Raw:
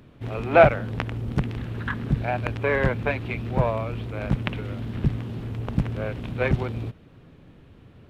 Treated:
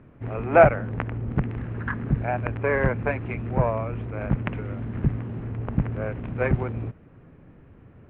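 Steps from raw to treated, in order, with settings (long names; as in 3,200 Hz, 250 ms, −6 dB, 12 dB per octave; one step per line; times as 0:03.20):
low-pass filter 2,200 Hz 24 dB per octave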